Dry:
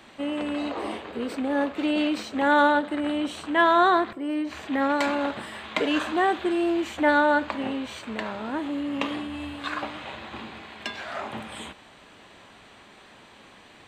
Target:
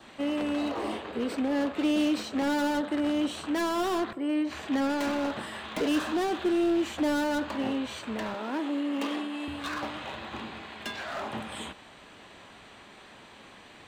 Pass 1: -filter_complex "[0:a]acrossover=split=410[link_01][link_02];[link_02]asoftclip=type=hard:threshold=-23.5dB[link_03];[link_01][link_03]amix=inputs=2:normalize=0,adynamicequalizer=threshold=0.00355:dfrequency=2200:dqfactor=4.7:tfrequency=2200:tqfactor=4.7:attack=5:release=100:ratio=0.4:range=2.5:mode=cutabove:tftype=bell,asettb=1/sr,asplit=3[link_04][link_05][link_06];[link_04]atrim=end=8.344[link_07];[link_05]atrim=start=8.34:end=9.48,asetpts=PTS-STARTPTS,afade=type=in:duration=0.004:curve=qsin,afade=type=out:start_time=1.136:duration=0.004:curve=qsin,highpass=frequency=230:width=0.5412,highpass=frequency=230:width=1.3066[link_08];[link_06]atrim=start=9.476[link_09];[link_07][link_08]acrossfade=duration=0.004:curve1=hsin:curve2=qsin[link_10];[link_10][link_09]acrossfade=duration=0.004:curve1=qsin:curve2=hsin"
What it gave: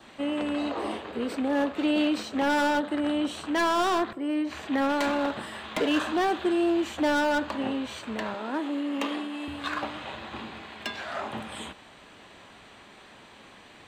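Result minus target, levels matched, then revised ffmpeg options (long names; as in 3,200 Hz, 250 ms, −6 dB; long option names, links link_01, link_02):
hard clipping: distortion −5 dB
-filter_complex "[0:a]acrossover=split=410[link_01][link_02];[link_02]asoftclip=type=hard:threshold=-31.5dB[link_03];[link_01][link_03]amix=inputs=2:normalize=0,adynamicequalizer=threshold=0.00355:dfrequency=2200:dqfactor=4.7:tfrequency=2200:tqfactor=4.7:attack=5:release=100:ratio=0.4:range=2.5:mode=cutabove:tftype=bell,asettb=1/sr,asplit=3[link_04][link_05][link_06];[link_04]atrim=end=8.344[link_07];[link_05]atrim=start=8.34:end=9.48,asetpts=PTS-STARTPTS,afade=type=in:duration=0.004:curve=qsin,afade=type=out:start_time=1.136:duration=0.004:curve=qsin,highpass=frequency=230:width=0.5412,highpass=frequency=230:width=1.3066[link_08];[link_06]atrim=start=9.476[link_09];[link_07][link_08]acrossfade=duration=0.004:curve1=hsin:curve2=qsin[link_10];[link_10][link_09]acrossfade=duration=0.004:curve1=qsin:curve2=hsin"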